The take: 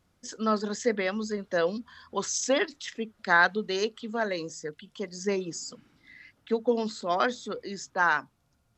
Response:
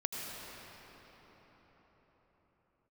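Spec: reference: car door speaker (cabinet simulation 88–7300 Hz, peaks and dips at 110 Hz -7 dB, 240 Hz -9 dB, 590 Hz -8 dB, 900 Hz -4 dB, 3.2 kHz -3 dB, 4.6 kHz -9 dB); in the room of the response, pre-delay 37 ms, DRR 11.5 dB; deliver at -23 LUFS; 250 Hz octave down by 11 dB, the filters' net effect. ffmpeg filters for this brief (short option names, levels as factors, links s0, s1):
-filter_complex "[0:a]equalizer=f=250:t=o:g=-9,asplit=2[s0][s1];[1:a]atrim=start_sample=2205,adelay=37[s2];[s1][s2]afir=irnorm=-1:irlink=0,volume=0.178[s3];[s0][s3]amix=inputs=2:normalize=0,highpass=88,equalizer=f=110:t=q:w=4:g=-7,equalizer=f=240:t=q:w=4:g=-9,equalizer=f=590:t=q:w=4:g=-8,equalizer=f=900:t=q:w=4:g=-4,equalizer=f=3200:t=q:w=4:g=-3,equalizer=f=4600:t=q:w=4:g=-9,lowpass=f=7300:w=0.5412,lowpass=f=7300:w=1.3066,volume=2.66"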